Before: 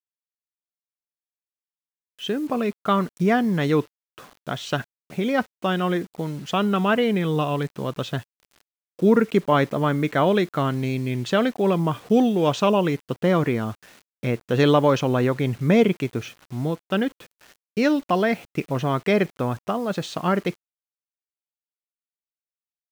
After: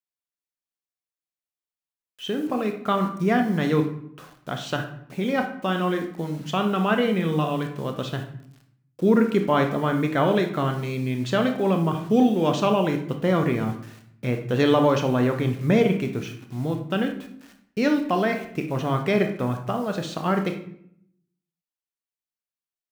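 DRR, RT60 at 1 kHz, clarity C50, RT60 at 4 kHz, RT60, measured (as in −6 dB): 5.0 dB, 0.65 s, 8.0 dB, 0.45 s, 0.70 s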